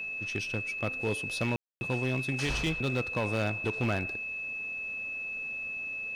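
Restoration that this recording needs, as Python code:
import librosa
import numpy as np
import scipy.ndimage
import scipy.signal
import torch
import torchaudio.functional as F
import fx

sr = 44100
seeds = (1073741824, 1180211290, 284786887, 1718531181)

y = fx.fix_declip(x, sr, threshold_db=-23.5)
y = fx.notch(y, sr, hz=2600.0, q=30.0)
y = fx.fix_ambience(y, sr, seeds[0], print_start_s=4.73, print_end_s=5.23, start_s=1.56, end_s=1.81)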